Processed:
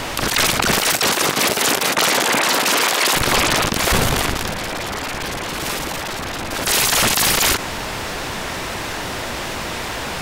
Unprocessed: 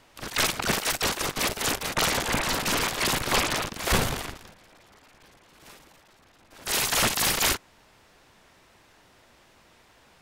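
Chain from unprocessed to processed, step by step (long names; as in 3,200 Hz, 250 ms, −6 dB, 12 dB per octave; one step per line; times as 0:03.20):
0:00.89–0:03.15: high-pass filter 120 Hz → 390 Hz 12 dB per octave
envelope flattener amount 70%
level +4.5 dB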